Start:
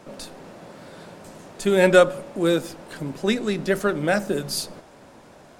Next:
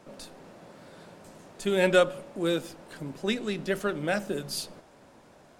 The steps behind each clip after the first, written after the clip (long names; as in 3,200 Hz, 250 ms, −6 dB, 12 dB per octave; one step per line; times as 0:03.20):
dynamic equaliser 3,000 Hz, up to +6 dB, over −43 dBFS, Q 2.3
level −7 dB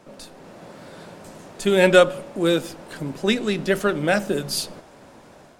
automatic gain control gain up to 5 dB
level +3 dB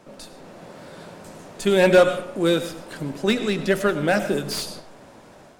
convolution reverb RT60 0.60 s, pre-delay 60 ms, DRR 11 dB
slew-rate limiting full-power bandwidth 280 Hz